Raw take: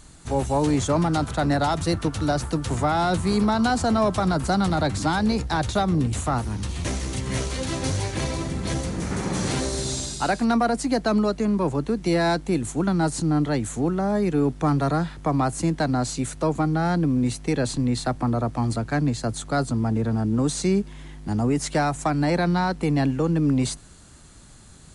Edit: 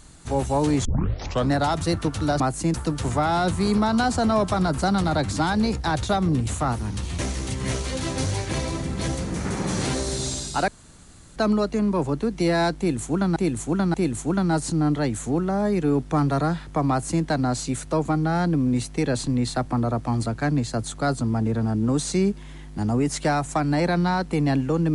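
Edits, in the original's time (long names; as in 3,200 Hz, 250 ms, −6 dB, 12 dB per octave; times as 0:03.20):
0:00.85: tape start 0.66 s
0:10.34–0:11.02: fill with room tone
0:12.44–0:13.02: repeat, 3 plays
0:15.39–0:15.73: duplicate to 0:02.40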